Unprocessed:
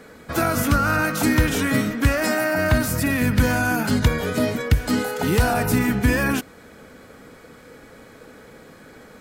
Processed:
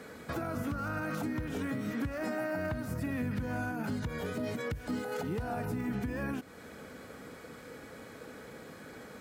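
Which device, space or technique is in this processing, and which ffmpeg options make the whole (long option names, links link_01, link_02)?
podcast mastering chain: -af "highpass=61,deesser=0.8,acompressor=threshold=-26dB:ratio=2.5,alimiter=limit=-23dB:level=0:latency=1:release=338,volume=-2.5dB" -ar 48000 -c:a libmp3lame -b:a 128k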